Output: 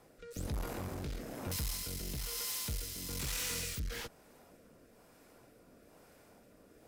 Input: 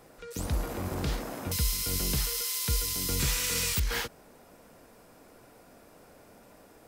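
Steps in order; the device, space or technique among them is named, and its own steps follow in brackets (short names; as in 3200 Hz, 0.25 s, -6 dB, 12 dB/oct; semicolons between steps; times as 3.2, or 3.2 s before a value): overdriven rotary cabinet (tube stage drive 33 dB, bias 0.65; rotary speaker horn 1.1 Hz)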